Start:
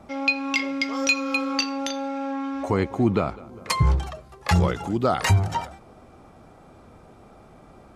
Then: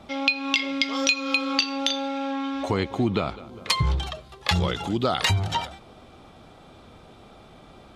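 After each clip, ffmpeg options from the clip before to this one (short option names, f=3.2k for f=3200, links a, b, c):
-af "equalizer=f=3.5k:w=1.6:g=13.5,acompressor=threshold=-19dB:ratio=4"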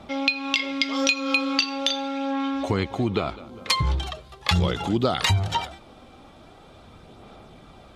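-af "aphaser=in_gain=1:out_gain=1:delay=3.8:decay=0.27:speed=0.41:type=sinusoidal"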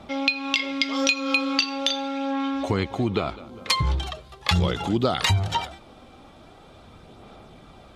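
-af anull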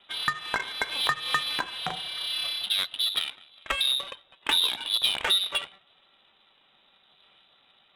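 -af "aeval=exprs='val(0)*sin(2*PI*290*n/s)':c=same,lowpass=f=3.4k:t=q:w=0.5098,lowpass=f=3.4k:t=q:w=0.6013,lowpass=f=3.4k:t=q:w=0.9,lowpass=f=3.4k:t=q:w=2.563,afreqshift=-4000,adynamicsmooth=sensitivity=3.5:basefreq=1.7k"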